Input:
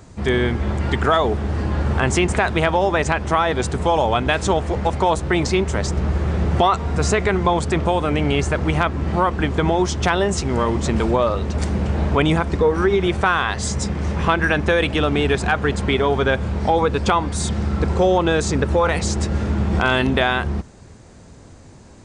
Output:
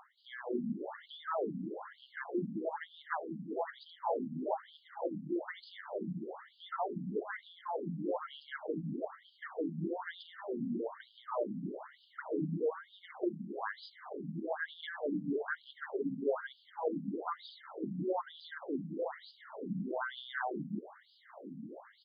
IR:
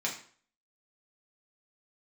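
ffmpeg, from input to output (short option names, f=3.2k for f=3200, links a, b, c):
-af "highshelf=f=2.2k:g=-11,areverse,acompressor=threshold=-32dB:ratio=10,areverse,asuperstop=centerf=2500:order=8:qfactor=3,aecho=1:1:105|174.9:0.282|0.891,afftfilt=real='re*between(b*sr/1024,200*pow(3600/200,0.5+0.5*sin(2*PI*1.1*pts/sr))/1.41,200*pow(3600/200,0.5+0.5*sin(2*PI*1.1*pts/sr))*1.41)':imag='im*between(b*sr/1024,200*pow(3600/200,0.5+0.5*sin(2*PI*1.1*pts/sr))/1.41,200*pow(3600/200,0.5+0.5*sin(2*PI*1.1*pts/sr))*1.41)':win_size=1024:overlap=0.75,volume=3.5dB"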